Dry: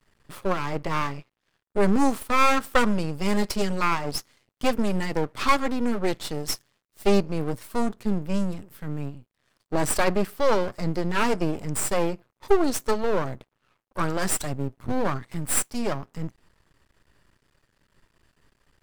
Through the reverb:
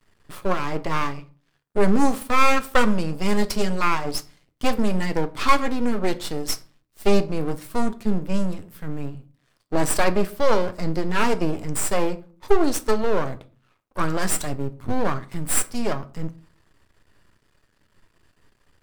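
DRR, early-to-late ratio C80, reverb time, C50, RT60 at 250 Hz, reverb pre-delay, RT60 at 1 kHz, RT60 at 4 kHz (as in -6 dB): 10.0 dB, 23.5 dB, 0.40 s, 19.0 dB, 0.60 s, 3 ms, 0.40 s, 0.25 s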